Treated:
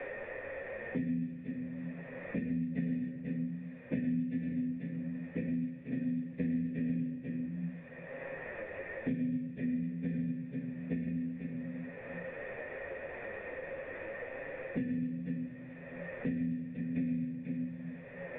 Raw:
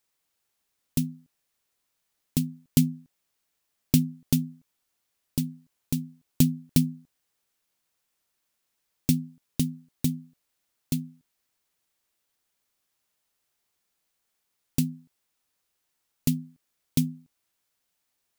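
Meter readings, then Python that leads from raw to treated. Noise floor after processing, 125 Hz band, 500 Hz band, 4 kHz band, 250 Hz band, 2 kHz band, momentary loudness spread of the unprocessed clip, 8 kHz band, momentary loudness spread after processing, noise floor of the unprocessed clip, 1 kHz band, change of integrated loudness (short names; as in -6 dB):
-48 dBFS, -8.5 dB, +8.0 dB, under -20 dB, -3.5 dB, +9.5 dB, 11 LU, under -40 dB, 8 LU, -79 dBFS, n/a, -9.0 dB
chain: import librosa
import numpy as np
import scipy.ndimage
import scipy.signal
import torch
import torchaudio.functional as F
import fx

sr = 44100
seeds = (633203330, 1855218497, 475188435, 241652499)

y = fx.partial_stretch(x, sr, pct=83)
y = scipy.signal.sosfilt(scipy.signal.butter(2, 110.0, 'highpass', fs=sr, output='sos'), y)
y = fx.low_shelf(y, sr, hz=430.0, db=9.0)
y = fx.echo_multitap(y, sr, ms=(105, 153, 244, 489), db=(-5.5, -8.5, -11.5, -8.5))
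y = fx.room_shoebox(y, sr, seeds[0], volume_m3=180.0, walls='mixed', distance_m=1.5)
y = fx.quant_dither(y, sr, seeds[1], bits=8, dither='triangular')
y = fx.chorus_voices(y, sr, voices=4, hz=0.44, base_ms=11, depth_ms=3.7, mix_pct=35)
y = fx.formant_cascade(y, sr, vowel='e')
y = fx.air_absorb(y, sr, metres=150.0)
y = fx.band_squash(y, sr, depth_pct=100)
y = F.gain(torch.from_numpy(y), 3.5).numpy()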